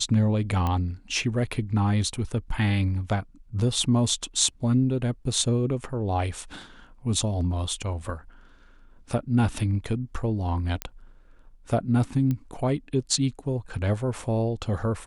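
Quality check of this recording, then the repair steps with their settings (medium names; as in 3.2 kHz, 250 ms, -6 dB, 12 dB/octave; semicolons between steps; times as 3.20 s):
0.67 s: pop -15 dBFS
10.82 s: pop -12 dBFS
12.31 s: pop -17 dBFS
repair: de-click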